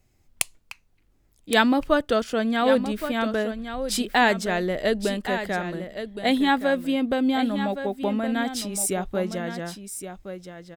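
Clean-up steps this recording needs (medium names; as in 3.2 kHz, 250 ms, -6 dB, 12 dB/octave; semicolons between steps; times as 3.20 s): inverse comb 1118 ms -10 dB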